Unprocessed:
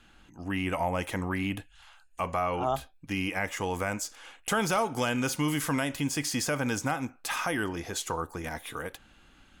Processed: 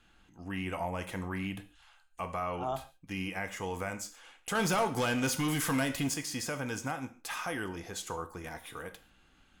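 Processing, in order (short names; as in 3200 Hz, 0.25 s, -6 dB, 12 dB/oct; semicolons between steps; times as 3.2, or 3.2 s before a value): 4.55–6.14 sample leveller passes 2; non-linear reverb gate 0.17 s falling, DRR 8.5 dB; gain -6.5 dB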